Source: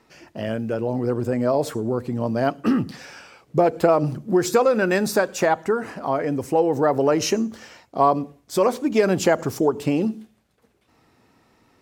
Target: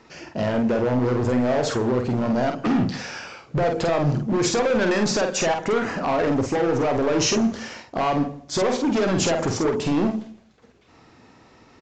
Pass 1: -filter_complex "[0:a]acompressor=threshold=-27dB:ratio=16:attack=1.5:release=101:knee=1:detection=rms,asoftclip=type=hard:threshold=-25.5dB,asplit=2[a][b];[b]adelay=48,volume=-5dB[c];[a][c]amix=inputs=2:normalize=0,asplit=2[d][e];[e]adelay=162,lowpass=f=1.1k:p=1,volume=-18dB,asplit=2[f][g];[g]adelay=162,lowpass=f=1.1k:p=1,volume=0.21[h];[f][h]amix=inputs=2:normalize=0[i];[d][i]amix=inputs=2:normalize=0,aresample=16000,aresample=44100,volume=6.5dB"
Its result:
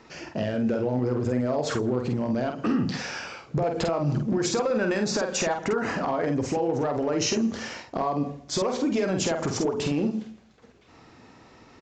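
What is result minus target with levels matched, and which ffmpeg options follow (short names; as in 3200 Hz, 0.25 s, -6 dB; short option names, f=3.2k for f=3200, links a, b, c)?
compressor: peak gain reduction +8 dB
-filter_complex "[0:a]acompressor=threshold=-18.5dB:ratio=16:attack=1.5:release=101:knee=1:detection=rms,asoftclip=type=hard:threshold=-25.5dB,asplit=2[a][b];[b]adelay=48,volume=-5dB[c];[a][c]amix=inputs=2:normalize=0,asplit=2[d][e];[e]adelay=162,lowpass=f=1.1k:p=1,volume=-18dB,asplit=2[f][g];[g]adelay=162,lowpass=f=1.1k:p=1,volume=0.21[h];[f][h]amix=inputs=2:normalize=0[i];[d][i]amix=inputs=2:normalize=0,aresample=16000,aresample=44100,volume=6.5dB"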